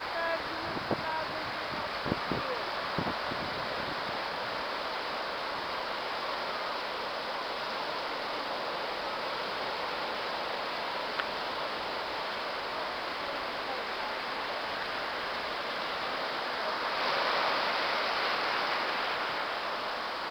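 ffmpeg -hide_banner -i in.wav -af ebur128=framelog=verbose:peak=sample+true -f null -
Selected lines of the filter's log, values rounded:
Integrated loudness:
  I:         -32.8 LUFS
  Threshold: -42.8 LUFS
Loudness range:
  LRA:         4.2 LU
  Threshold: -52.9 LUFS
  LRA low:   -34.0 LUFS
  LRA high:  -29.9 LUFS
Sample peak:
  Peak:      -12.0 dBFS
True peak:
  Peak:      -11.9 dBFS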